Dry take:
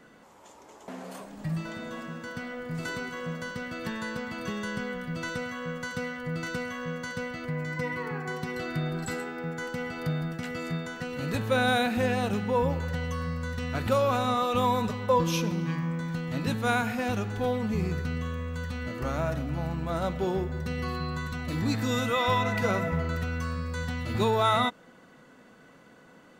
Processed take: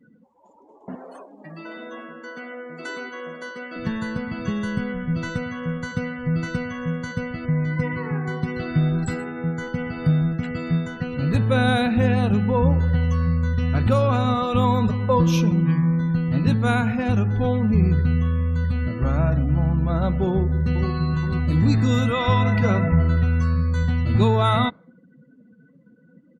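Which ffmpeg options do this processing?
-filter_complex "[0:a]asettb=1/sr,asplit=3[a][b][c];[a]atrim=end=0.954[d];[b]atrim=start=0.95:end=3.76,asetpts=PTS-STARTPTS,afade=t=in:d=0.004:c=qsin,afade=t=out:st=2.806:d=0.004:c=qsin,highpass=f=310:w=0.5412,highpass=f=310:w=1.3066[e];[c]atrim=start=3.756[f];[d][e]acrossfade=d=0.004:c1=hsin:c2=qsin[g];[g][f]acrossfade=d=0.004:c1=qsin:c2=hsin,asplit=2[h][i];[i]afade=t=in:st=20.28:d=0.01,afade=t=out:st=20.92:d=0.01,aecho=0:1:470|940|1410|1880|2350|2820:0.398107|0.199054|0.0995268|0.0497634|0.0248817|0.0124408[j];[h][j]amix=inputs=2:normalize=0,afftdn=nr=29:nf=-45,bass=f=250:g=11,treble=f=4k:g=-1,volume=2.5dB"

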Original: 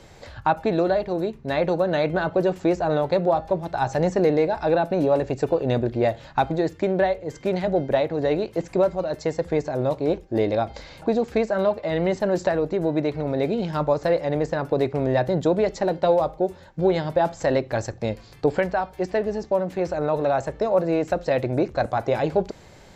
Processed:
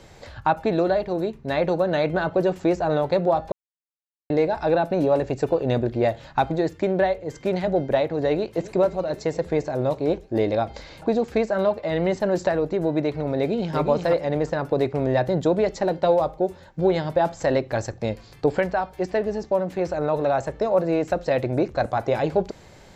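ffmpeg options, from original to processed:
-filter_complex "[0:a]asplit=2[a][b];[b]afade=t=in:st=8.29:d=0.01,afade=t=out:st=8.73:d=0.01,aecho=0:1:260|520|780|1040|1300|1560|1820|2080|2340|2600|2860|3120:0.149624|0.119699|0.0957591|0.0766073|0.0612858|0.0490286|0.0392229|0.0313783|0.0251027|0.0200821|0.0160657|0.0128526[c];[a][c]amix=inputs=2:normalize=0,asplit=2[d][e];[e]afade=t=in:st=13.37:d=0.01,afade=t=out:st=13.77:d=0.01,aecho=0:1:360|720|1080:0.562341|0.0843512|0.0126527[f];[d][f]amix=inputs=2:normalize=0,asplit=3[g][h][i];[g]atrim=end=3.52,asetpts=PTS-STARTPTS,afade=t=out:st=3.516:d=0.004:c=hsin[j];[h]atrim=start=3.52:end=4.3,asetpts=PTS-STARTPTS,volume=0[k];[i]atrim=start=4.3,asetpts=PTS-STARTPTS,afade=t=in:d=0.004:c=hsin[l];[j][k][l]concat=n=3:v=0:a=1"

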